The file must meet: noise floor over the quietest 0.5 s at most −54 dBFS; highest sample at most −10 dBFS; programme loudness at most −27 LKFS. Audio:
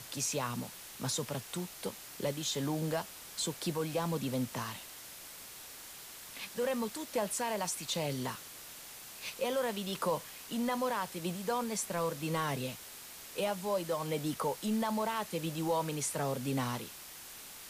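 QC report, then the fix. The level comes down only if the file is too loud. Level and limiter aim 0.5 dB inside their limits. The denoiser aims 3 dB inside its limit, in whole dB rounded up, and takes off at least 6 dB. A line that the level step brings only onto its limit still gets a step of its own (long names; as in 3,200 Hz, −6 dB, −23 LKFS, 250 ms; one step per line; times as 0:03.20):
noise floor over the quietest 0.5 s −49 dBFS: out of spec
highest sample −21.0 dBFS: in spec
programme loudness −36.0 LKFS: in spec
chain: broadband denoise 8 dB, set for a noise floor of −49 dBFS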